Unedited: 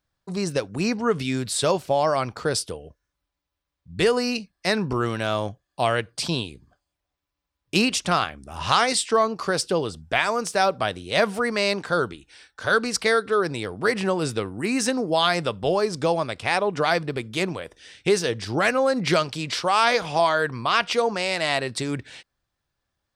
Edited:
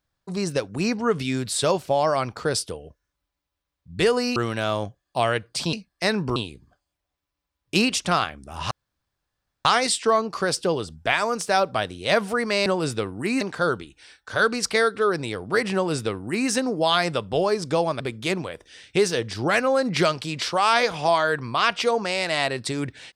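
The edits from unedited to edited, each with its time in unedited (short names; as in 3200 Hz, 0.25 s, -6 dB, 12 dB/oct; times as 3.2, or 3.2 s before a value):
4.36–4.99 move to 6.36
8.71 insert room tone 0.94 s
14.05–14.8 copy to 11.72
16.31–17.11 cut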